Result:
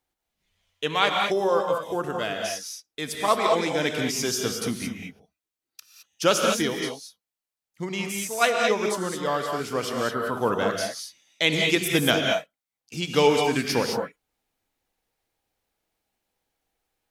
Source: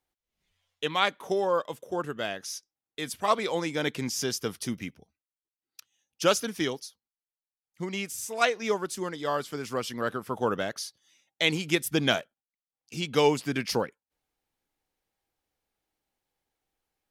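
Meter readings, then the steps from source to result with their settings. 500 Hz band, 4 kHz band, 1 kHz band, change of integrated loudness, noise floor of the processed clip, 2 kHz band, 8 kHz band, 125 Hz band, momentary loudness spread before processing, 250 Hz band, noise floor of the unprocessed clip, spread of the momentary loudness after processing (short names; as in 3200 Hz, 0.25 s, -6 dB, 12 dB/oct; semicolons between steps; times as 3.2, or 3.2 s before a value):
+5.0 dB, +5.0 dB, +5.0 dB, +4.5 dB, under -85 dBFS, +5.0 dB, +5.0 dB, +3.5 dB, 12 LU, +4.0 dB, under -85 dBFS, 12 LU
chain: non-linear reverb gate 0.24 s rising, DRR 1 dB; gain +2.5 dB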